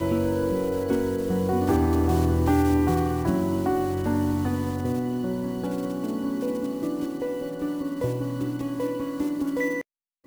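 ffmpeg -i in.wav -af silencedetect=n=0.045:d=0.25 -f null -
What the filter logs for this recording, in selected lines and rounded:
silence_start: 9.81
silence_end: 10.27 | silence_duration: 0.45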